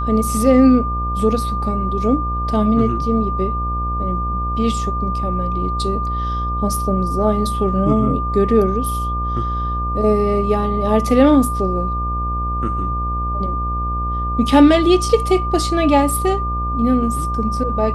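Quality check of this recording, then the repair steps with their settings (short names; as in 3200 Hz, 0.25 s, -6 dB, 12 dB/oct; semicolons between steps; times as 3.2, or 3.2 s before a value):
buzz 60 Hz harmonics 22 -23 dBFS
tone 1200 Hz -22 dBFS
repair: de-hum 60 Hz, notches 22; notch 1200 Hz, Q 30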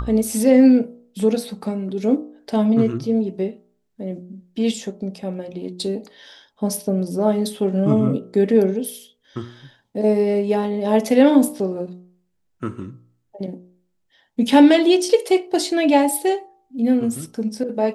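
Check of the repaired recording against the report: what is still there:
none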